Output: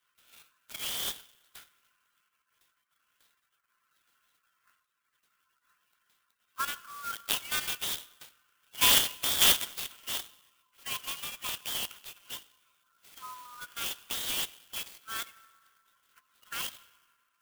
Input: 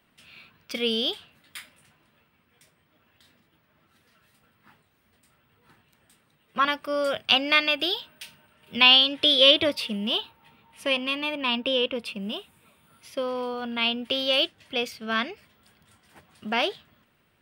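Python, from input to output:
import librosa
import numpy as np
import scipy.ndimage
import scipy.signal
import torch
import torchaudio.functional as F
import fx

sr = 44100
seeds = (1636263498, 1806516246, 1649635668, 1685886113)

p1 = fx.spec_quant(x, sr, step_db=30)
p2 = fx.level_steps(p1, sr, step_db=17)
p3 = p1 + (p2 * librosa.db_to_amplitude(1.0))
p4 = scipy.signal.sosfilt(scipy.signal.cheby1(6, 9, 1000.0, 'highpass', fs=sr, output='sos'), p3)
p5 = fx.rev_freeverb(p4, sr, rt60_s=2.5, hf_ratio=0.35, predelay_ms=10, drr_db=16.5)
p6 = fx.clock_jitter(p5, sr, seeds[0], jitter_ms=0.052)
y = p6 * librosa.db_to_amplitude(-7.5)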